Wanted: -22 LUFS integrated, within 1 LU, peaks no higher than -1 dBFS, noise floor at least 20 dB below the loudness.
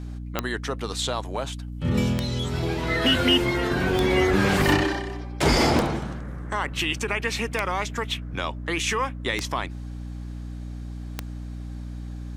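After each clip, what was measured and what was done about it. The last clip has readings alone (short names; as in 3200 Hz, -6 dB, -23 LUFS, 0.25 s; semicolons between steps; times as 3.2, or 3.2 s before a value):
clicks 7; hum 60 Hz; harmonics up to 300 Hz; hum level -31 dBFS; loudness -24.5 LUFS; peak -6.5 dBFS; loudness target -22.0 LUFS
-> de-click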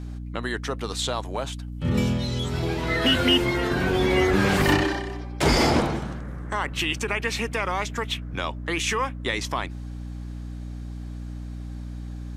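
clicks 0; hum 60 Hz; harmonics up to 300 Hz; hum level -31 dBFS
-> de-hum 60 Hz, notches 5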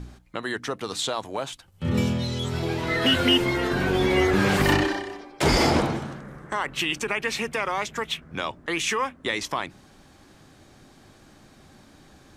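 hum none; loudness -24.5 LUFS; peak -7.5 dBFS; loudness target -22.0 LUFS
-> gain +2.5 dB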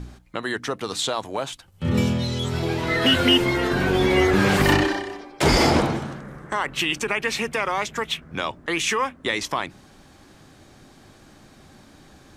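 loudness -22.0 LUFS; peak -5.0 dBFS; noise floor -51 dBFS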